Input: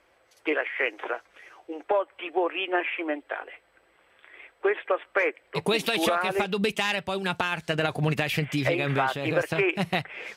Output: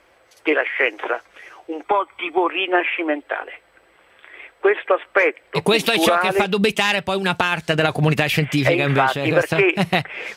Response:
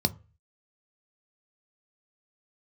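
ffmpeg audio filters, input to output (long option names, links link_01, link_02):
-filter_complex "[0:a]asettb=1/sr,asplit=3[link_01][link_02][link_03];[link_01]atrim=end=1.854[link_04];[link_02]atrim=start=1.85:end=2.5,asetpts=PTS-STARTPTS,afade=type=in:duration=0.004:curve=qsin,afade=type=out:start_time=0.646:duration=0.004:curve=qsin,aecho=1:1:0.9:0.62,atrim=end_sample=28665[link_05];[link_03]atrim=start=2.496[link_06];[link_04][link_05]acrossfade=duration=0.004:curve1=hsin:curve2=qsin[link_07];[link_07][link_06]acrossfade=duration=0.004:curve1=qsin:curve2=hsin,volume=8dB"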